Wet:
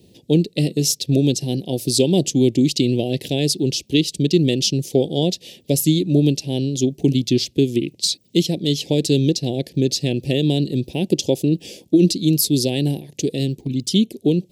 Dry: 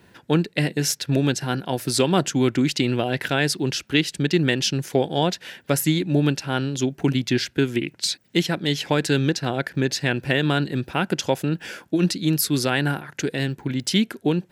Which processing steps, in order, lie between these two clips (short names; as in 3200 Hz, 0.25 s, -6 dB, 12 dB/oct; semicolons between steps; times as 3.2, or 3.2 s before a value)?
Chebyshev band-stop 460–3800 Hz, order 2; 11–12.17 dynamic EQ 340 Hz, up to +4 dB, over -33 dBFS; 13.61–14.15 envelope flanger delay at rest 3 ms, full sweep at -19 dBFS; gain +4.5 dB